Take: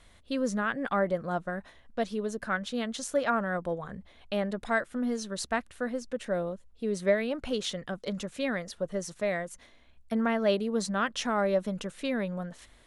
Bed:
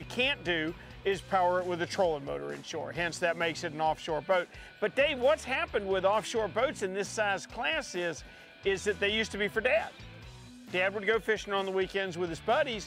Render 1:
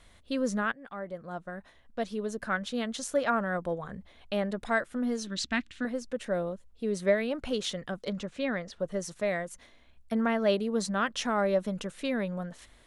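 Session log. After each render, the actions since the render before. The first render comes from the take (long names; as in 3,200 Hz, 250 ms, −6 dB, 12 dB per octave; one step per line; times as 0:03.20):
0:00.72–0:02.48: fade in, from −18.5 dB
0:05.27–0:05.85: drawn EQ curve 170 Hz 0 dB, 290 Hz +8 dB, 430 Hz −11 dB, 1,200 Hz −5 dB, 2,100 Hz +5 dB, 3,400 Hz +8 dB, 5,100 Hz +3 dB, 7,300 Hz 0 dB, 12,000 Hz −21 dB
0:08.10–0:08.80: high-frequency loss of the air 91 metres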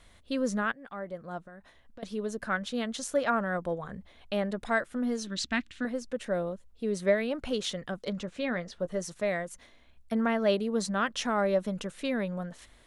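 0:01.41–0:02.03: downward compressor, threshold −45 dBFS
0:08.26–0:09.02: double-tracking delay 17 ms −12.5 dB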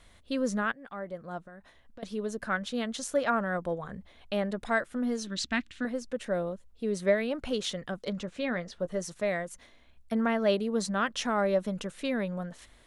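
no processing that can be heard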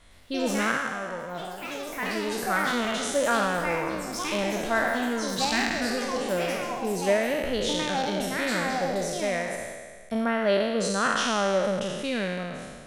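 peak hold with a decay on every bin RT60 1.73 s
delay with pitch and tempo change per echo 109 ms, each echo +5 semitones, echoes 3, each echo −6 dB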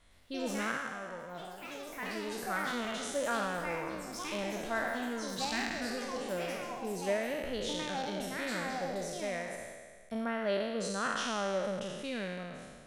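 level −9 dB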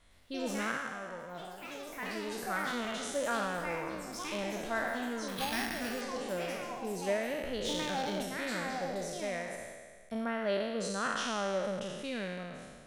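0:05.28–0:06.01: bad sample-rate conversion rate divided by 6×, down none, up hold
0:07.65–0:08.23: mu-law and A-law mismatch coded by mu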